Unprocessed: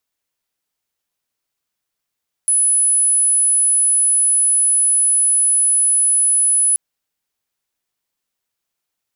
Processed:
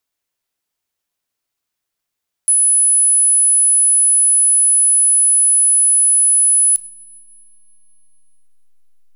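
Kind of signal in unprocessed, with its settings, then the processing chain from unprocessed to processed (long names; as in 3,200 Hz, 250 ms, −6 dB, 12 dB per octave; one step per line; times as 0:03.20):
tone sine 10,100 Hz −11.5 dBFS 4.28 s
in parallel at −11.5 dB: slack as between gear wheels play −30 dBFS
on the sum: coupled-rooms reverb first 0.38 s, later 3 s, from −21 dB, DRR 11.5 dB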